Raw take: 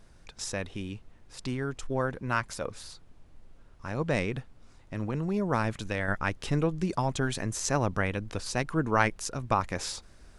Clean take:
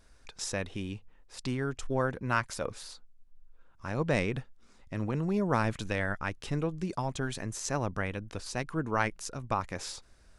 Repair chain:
noise reduction from a noise print 6 dB
level 0 dB, from 0:06.08 −4.5 dB

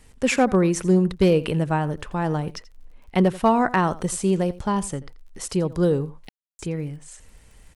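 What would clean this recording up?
clipped peaks rebuilt −9.5 dBFS
click removal
ambience match 0:06.29–0:06.59
echo removal 85 ms −18.5 dB

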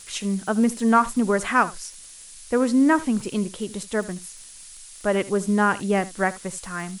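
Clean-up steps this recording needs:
click removal
noise reduction from a noise print 23 dB
echo removal 76 ms −18.5 dB

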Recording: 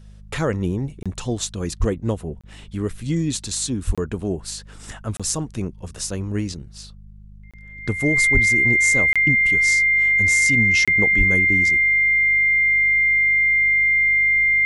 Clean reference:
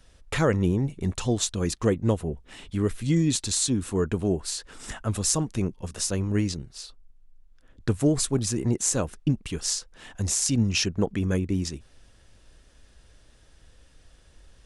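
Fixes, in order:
hum removal 51.1 Hz, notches 4
notch filter 2,100 Hz, Q 30
high-pass at the plosives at 0:01.79/0:03.86/0:08.33/0:11.17
repair the gap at 0:01.03/0:02.41/0:03.95/0:05.17/0:07.51/0:09.13/0:10.85, 26 ms

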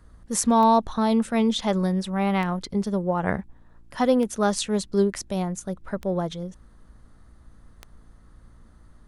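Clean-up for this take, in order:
click removal
hum removal 57.2 Hz, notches 6

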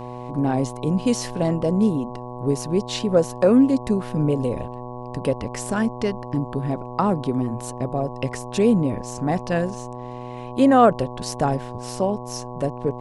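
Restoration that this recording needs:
hum removal 123.2 Hz, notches 9

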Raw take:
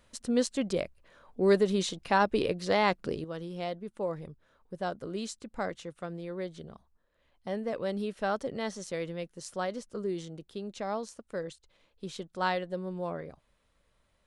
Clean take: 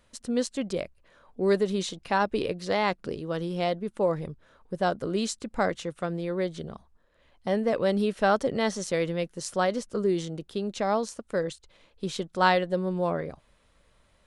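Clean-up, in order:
level correction +8 dB, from 0:03.24

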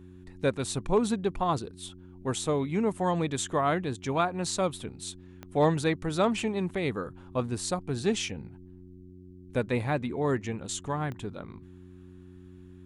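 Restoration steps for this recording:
clipped peaks rebuilt −14 dBFS
click removal
hum removal 91 Hz, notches 4

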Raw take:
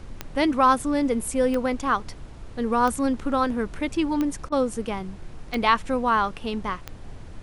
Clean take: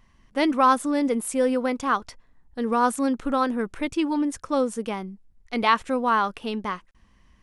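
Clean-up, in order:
click removal
repair the gap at 0:04.49, 30 ms
noise reduction from a noise print 18 dB

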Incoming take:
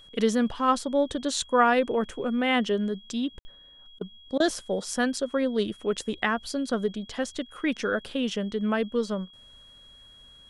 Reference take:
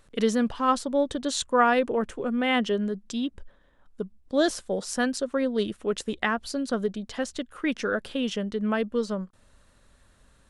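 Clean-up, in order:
notch filter 3,300 Hz, Q 30
ambience match 0:03.39–0:03.45
repair the gap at 0:03.99/0:04.38, 19 ms

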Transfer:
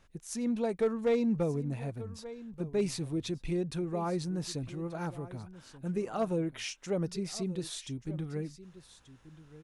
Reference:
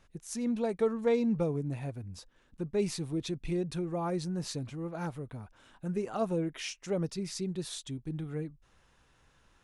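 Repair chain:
clipped peaks rebuilt −21.5 dBFS
echo removal 1,183 ms −16.5 dB

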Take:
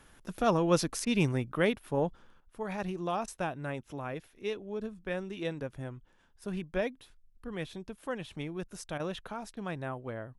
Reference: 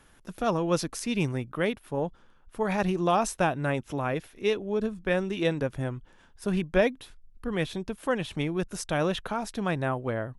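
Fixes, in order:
repair the gap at 0:01.05/0:03.26/0:08.98/0:09.55, 16 ms
level correction +9 dB, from 0:02.40

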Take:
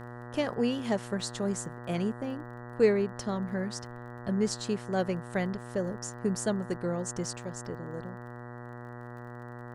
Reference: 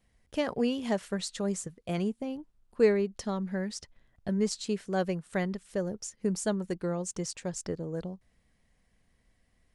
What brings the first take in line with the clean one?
click removal
hum removal 120.9 Hz, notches 16
downward expander −36 dBFS, range −21 dB
level correction +5 dB, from 0:07.38

